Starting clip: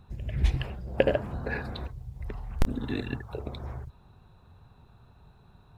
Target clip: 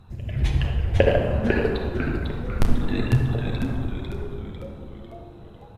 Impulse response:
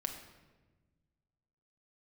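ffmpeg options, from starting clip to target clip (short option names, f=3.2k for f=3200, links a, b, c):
-filter_complex "[0:a]asplit=7[a][b][c][d][e][f][g];[b]adelay=499,afreqshift=-140,volume=-4dB[h];[c]adelay=998,afreqshift=-280,volume=-10.4dB[i];[d]adelay=1497,afreqshift=-420,volume=-16.8dB[j];[e]adelay=1996,afreqshift=-560,volume=-23.1dB[k];[f]adelay=2495,afreqshift=-700,volume=-29.5dB[l];[g]adelay=2994,afreqshift=-840,volume=-35.9dB[m];[a][h][i][j][k][l][m]amix=inputs=7:normalize=0[n];[1:a]atrim=start_sample=2205,asetrate=27342,aresample=44100[o];[n][o]afir=irnorm=-1:irlink=0,volume=2dB"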